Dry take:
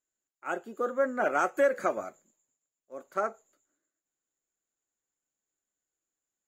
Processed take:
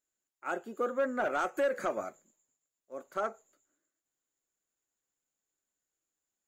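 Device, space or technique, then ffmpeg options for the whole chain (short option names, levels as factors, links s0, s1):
soft clipper into limiter: -af "asoftclip=type=tanh:threshold=0.112,alimiter=limit=0.0708:level=0:latency=1:release=135"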